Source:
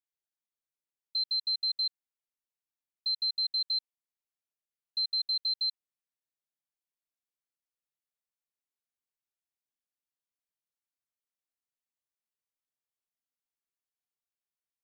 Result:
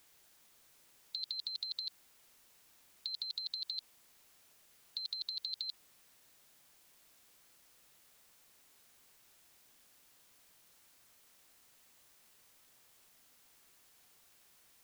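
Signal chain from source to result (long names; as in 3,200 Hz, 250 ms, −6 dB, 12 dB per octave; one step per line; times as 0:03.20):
brickwall limiter −32 dBFS, peak gain reduction 6.5 dB
every bin compressed towards the loudest bin 4 to 1
level +10 dB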